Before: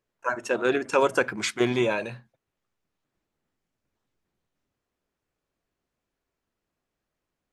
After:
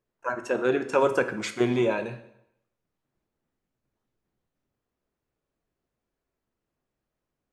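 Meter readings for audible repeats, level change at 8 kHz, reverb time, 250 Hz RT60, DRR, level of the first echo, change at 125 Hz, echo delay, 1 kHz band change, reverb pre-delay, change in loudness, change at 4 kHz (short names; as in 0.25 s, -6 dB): none, -6.0 dB, 0.80 s, 0.80 s, 9.0 dB, none, +1.0 dB, none, -1.5 dB, 5 ms, -0.5 dB, -5.5 dB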